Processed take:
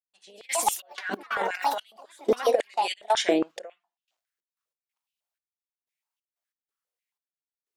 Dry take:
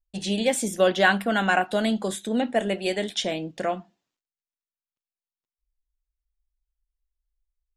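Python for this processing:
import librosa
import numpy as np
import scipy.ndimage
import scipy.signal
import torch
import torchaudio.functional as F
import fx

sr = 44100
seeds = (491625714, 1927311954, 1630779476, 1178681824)

y = fx.echo_pitch(x, sr, ms=187, semitones=4, count=3, db_per_echo=-6.0)
y = fx.over_compress(y, sr, threshold_db=-25.0, ratio=-0.5)
y = fx.step_gate(y, sr, bpm=92, pattern='...xx.x.xxx', floor_db=-24.0, edge_ms=4.5)
y = fx.dynamic_eq(y, sr, hz=3200.0, q=1.3, threshold_db=-43.0, ratio=4.0, max_db=-5)
y = fx.filter_held_highpass(y, sr, hz=7.3, low_hz=370.0, high_hz=2900.0)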